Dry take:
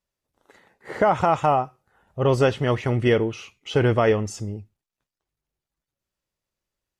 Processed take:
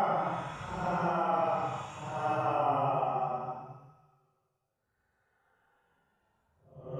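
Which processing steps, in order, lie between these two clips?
short-time reversal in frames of 58 ms; Paulstretch 6.4×, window 0.10 s, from 1.09; gain -8 dB

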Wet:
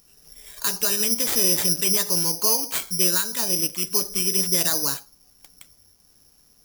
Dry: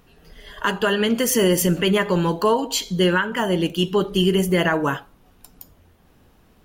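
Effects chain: 3.69–4.36 ripple EQ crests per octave 0.99, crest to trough 8 dB; careless resampling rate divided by 8×, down none, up zero stuff; gain -11.5 dB

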